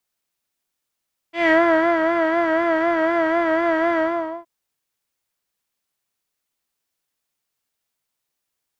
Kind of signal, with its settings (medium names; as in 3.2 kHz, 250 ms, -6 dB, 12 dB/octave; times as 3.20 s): synth patch with vibrato E5, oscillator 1 square, interval 0 st, oscillator 2 level -5 dB, sub -0.5 dB, noise -4 dB, filter lowpass, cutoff 980 Hz, Q 2.8, filter envelope 1.5 oct, attack 164 ms, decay 0.52 s, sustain -4.5 dB, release 0.47 s, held 2.65 s, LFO 4 Hz, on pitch 63 cents